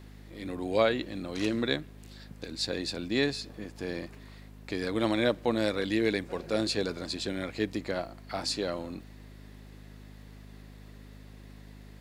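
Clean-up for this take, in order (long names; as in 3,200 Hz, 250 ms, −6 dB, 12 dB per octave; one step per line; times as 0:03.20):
click removal
hum removal 51.4 Hz, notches 5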